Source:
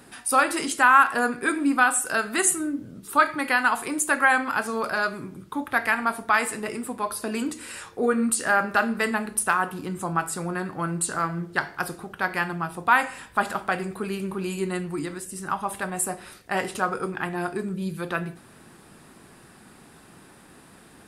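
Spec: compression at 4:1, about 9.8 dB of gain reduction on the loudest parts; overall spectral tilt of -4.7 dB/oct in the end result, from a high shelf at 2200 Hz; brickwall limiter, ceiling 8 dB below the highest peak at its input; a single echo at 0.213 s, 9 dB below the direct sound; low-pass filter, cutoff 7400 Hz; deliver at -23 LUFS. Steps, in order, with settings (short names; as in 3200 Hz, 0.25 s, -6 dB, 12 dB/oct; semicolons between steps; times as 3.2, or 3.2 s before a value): LPF 7400 Hz; high shelf 2200 Hz -3.5 dB; compressor 4:1, threshold -24 dBFS; limiter -21 dBFS; echo 0.213 s -9 dB; gain +8.5 dB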